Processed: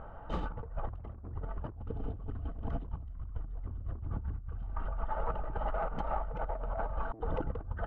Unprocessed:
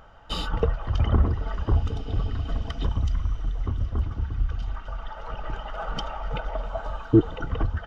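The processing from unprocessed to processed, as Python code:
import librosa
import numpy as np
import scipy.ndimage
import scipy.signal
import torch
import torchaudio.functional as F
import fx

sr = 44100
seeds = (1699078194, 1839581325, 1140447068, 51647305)

y = fx.self_delay(x, sr, depth_ms=0.64)
y = scipy.signal.sosfilt(scipy.signal.butter(2, 1100.0, 'lowpass', fs=sr, output='sos'), y)
y = fx.over_compress(y, sr, threshold_db=-35.0, ratio=-1.0)
y = y * librosa.db_to_amplitude(-2.5)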